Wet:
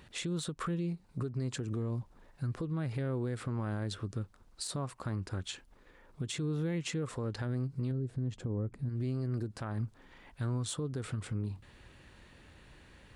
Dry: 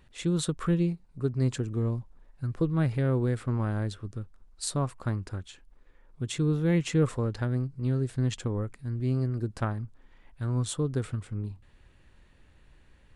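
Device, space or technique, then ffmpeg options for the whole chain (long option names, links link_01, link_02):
broadcast voice chain: -filter_complex "[0:a]asplit=3[link_01][link_02][link_03];[link_01]afade=type=out:start_time=7.91:duration=0.02[link_04];[link_02]tiltshelf=frequency=880:gain=9.5,afade=type=in:start_time=7.91:duration=0.02,afade=type=out:start_time=8.88:duration=0.02[link_05];[link_03]afade=type=in:start_time=8.88:duration=0.02[link_06];[link_04][link_05][link_06]amix=inputs=3:normalize=0,highpass=frequency=100:poles=1,deesser=0.65,acompressor=threshold=-34dB:ratio=5,equalizer=frequency=4500:width_type=o:width=0.77:gain=2,alimiter=level_in=10.5dB:limit=-24dB:level=0:latency=1:release=131,volume=-10.5dB,volume=6.5dB"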